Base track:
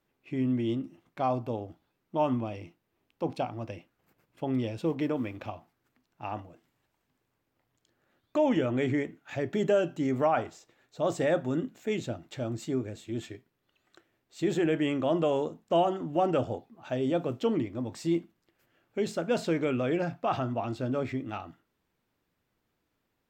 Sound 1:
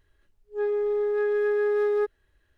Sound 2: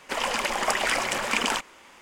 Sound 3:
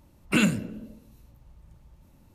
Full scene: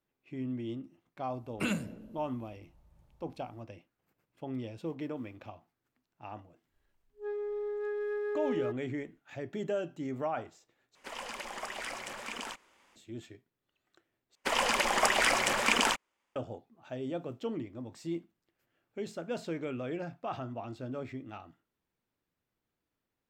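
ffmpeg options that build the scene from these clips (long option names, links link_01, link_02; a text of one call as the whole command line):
ffmpeg -i bed.wav -i cue0.wav -i cue1.wav -i cue2.wav -filter_complex "[2:a]asplit=2[link_01][link_02];[0:a]volume=-8.5dB[link_03];[3:a]equalizer=frequency=720:width_type=o:width=1.1:gain=6[link_04];[link_01]alimiter=limit=-11.5dB:level=0:latency=1:release=26[link_05];[link_02]agate=range=-29dB:threshold=-40dB:ratio=16:release=35:detection=peak[link_06];[link_03]asplit=3[link_07][link_08][link_09];[link_07]atrim=end=10.954[link_10];[link_05]atrim=end=2.01,asetpts=PTS-STARTPTS,volume=-14.5dB[link_11];[link_08]atrim=start=12.956:end=14.354[link_12];[link_06]atrim=end=2.01,asetpts=PTS-STARTPTS,volume=-1.5dB[link_13];[link_09]atrim=start=16.356[link_14];[link_04]atrim=end=2.34,asetpts=PTS-STARTPTS,volume=-11dB,afade=type=in:duration=0.004:curve=hsin,afade=type=out:start_time=2.336:duration=0.004:curve=hsin,adelay=1280[link_15];[1:a]atrim=end=2.57,asetpts=PTS-STARTPTS,volume=-10.5dB,afade=type=in:duration=0.1,afade=type=out:start_time=2.47:duration=0.1,adelay=293706S[link_16];[link_10][link_11]acrossfade=duration=0.004:curve1=hsin:curve2=hsin[link_17];[link_17][link_12]acrossfade=duration=0.004:curve1=hsin:curve2=hsin[link_18];[link_18][link_13]acrossfade=duration=0.004:curve1=hsin:curve2=hsin[link_19];[link_19][link_14]acrossfade=duration=0.004:curve1=hsin:curve2=hsin[link_20];[link_20][link_15][link_16]amix=inputs=3:normalize=0" out.wav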